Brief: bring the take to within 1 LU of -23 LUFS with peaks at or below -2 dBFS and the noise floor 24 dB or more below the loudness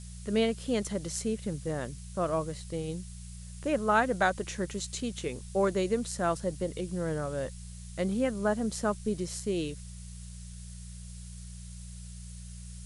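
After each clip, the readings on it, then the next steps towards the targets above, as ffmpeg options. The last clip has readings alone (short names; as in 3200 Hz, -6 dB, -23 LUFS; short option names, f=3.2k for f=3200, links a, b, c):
hum 60 Hz; harmonics up to 180 Hz; hum level -41 dBFS; noise floor -44 dBFS; noise floor target -56 dBFS; loudness -31.5 LUFS; peak -13.0 dBFS; loudness target -23.0 LUFS
-> -af "bandreject=f=60:t=h:w=4,bandreject=f=120:t=h:w=4,bandreject=f=180:t=h:w=4"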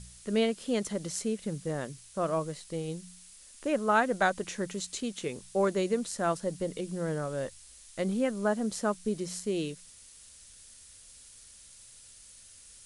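hum none; noise floor -54 dBFS; noise floor target -56 dBFS
-> -af "afftdn=nr=6:nf=-54"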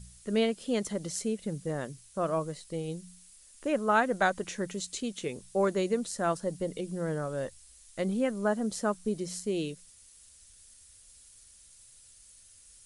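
noise floor -57 dBFS; loudness -32.0 LUFS; peak -13.0 dBFS; loudness target -23.0 LUFS
-> -af "volume=9dB"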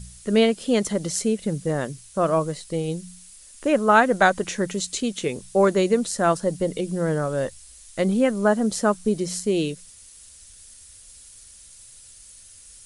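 loudness -23.0 LUFS; peak -4.0 dBFS; noise floor -48 dBFS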